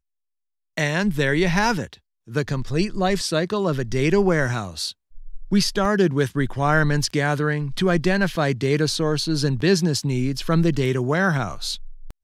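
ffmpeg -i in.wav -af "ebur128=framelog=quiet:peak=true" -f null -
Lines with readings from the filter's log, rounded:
Integrated loudness:
  I:         -21.7 LUFS
  Threshold: -32.0 LUFS
Loudness range:
  LRA:         2.0 LU
  Threshold: -41.9 LUFS
  LRA low:   -23.0 LUFS
  LRA high:  -21.1 LUFS
True peak:
  Peak:       -5.1 dBFS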